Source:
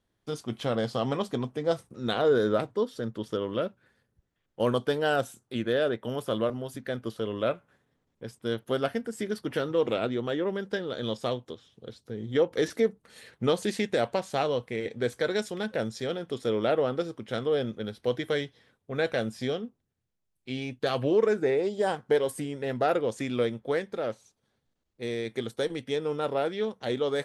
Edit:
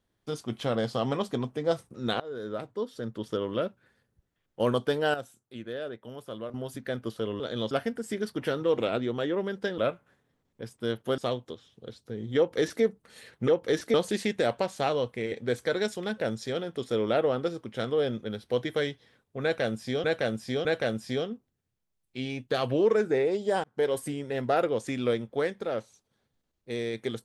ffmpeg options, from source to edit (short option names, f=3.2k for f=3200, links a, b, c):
-filter_complex "[0:a]asplit=13[a][b][c][d][e][f][g][h][i][j][k][l][m];[a]atrim=end=2.2,asetpts=PTS-STARTPTS,afade=t=out:st=2.196:d=0.004:c=hsin:silence=0.0707946[n];[b]atrim=start=2.2:end=5.142,asetpts=PTS-STARTPTS,afade=t=in:d=1.12:silence=0.0707946[o];[c]atrim=start=5.138:end=6.542,asetpts=PTS-STARTPTS,volume=-10dB[p];[d]atrim=start=6.538:end=7.402[q];[e]atrim=start=10.868:end=11.182[r];[f]atrim=start=8.798:end=10.872[s];[g]atrim=start=7.398:end=8.802[t];[h]atrim=start=11.178:end=13.482[u];[i]atrim=start=12.368:end=12.832[v];[j]atrim=start=13.478:end=19.582[w];[k]atrim=start=18.968:end=19.582[x];[l]atrim=start=18.968:end=21.96,asetpts=PTS-STARTPTS,afade=t=out:st=2.988:d=0.004:c=hsin[y];[m]atrim=start=21.96,asetpts=PTS-STARTPTS,afade=t=in:d=0.36:c=qsin[z];[n][o]concat=n=2:v=0:a=1[aa];[aa][p]acrossfade=d=0.004:c1=hsin:c2=hsin[ab];[ab][q]acrossfade=d=0.004:c1=hsin:c2=hsin[ac];[ac][r]acrossfade=d=0.004:c1=hsin:c2=hsin[ad];[ad][s]acrossfade=d=0.004:c1=hsin:c2=hsin[ae];[ae][t]acrossfade=d=0.004:c1=hsin:c2=hsin[af];[af][u]acrossfade=d=0.004:c1=hsin:c2=hsin[ag];[ag][v]acrossfade=d=0.004:c1=hsin:c2=hsin[ah];[ah][w]acrossfade=d=0.004:c1=hsin:c2=hsin[ai];[ai][x]acrossfade=d=0.004:c1=hsin:c2=hsin[aj];[y][z]concat=n=2:v=0:a=1[ak];[aj][ak]acrossfade=d=0.004:c1=hsin:c2=hsin"